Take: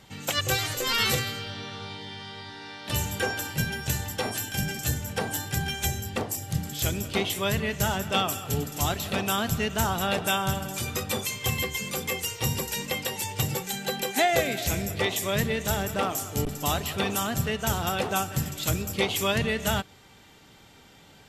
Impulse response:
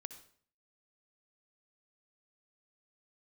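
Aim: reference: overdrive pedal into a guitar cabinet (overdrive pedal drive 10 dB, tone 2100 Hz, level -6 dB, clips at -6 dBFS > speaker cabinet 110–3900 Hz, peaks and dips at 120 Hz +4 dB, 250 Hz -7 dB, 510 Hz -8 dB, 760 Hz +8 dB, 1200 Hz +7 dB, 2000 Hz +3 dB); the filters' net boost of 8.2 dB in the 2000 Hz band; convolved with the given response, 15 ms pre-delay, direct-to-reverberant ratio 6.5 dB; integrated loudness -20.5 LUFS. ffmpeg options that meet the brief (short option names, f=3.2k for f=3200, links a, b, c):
-filter_complex "[0:a]equalizer=f=2k:t=o:g=7.5,asplit=2[a][b];[1:a]atrim=start_sample=2205,adelay=15[c];[b][c]afir=irnorm=-1:irlink=0,volume=-2dB[d];[a][d]amix=inputs=2:normalize=0,asplit=2[e][f];[f]highpass=f=720:p=1,volume=10dB,asoftclip=type=tanh:threshold=-6dB[g];[e][g]amix=inputs=2:normalize=0,lowpass=f=2.1k:p=1,volume=-6dB,highpass=110,equalizer=f=120:t=q:w=4:g=4,equalizer=f=250:t=q:w=4:g=-7,equalizer=f=510:t=q:w=4:g=-8,equalizer=f=760:t=q:w=4:g=8,equalizer=f=1.2k:t=q:w=4:g=7,equalizer=f=2k:t=q:w=4:g=3,lowpass=f=3.9k:w=0.5412,lowpass=f=3.9k:w=1.3066,volume=1.5dB"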